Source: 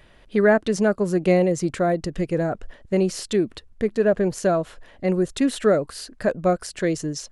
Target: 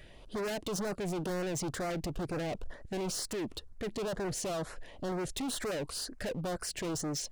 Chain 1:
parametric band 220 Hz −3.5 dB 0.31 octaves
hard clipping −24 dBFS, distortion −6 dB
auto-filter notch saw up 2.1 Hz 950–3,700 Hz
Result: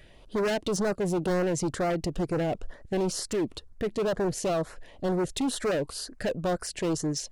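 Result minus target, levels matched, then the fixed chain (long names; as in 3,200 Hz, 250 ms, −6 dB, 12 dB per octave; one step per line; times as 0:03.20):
hard clipping: distortion −4 dB
parametric band 220 Hz −3.5 dB 0.31 octaves
hard clipping −33 dBFS, distortion −2 dB
auto-filter notch saw up 2.1 Hz 950–3,700 Hz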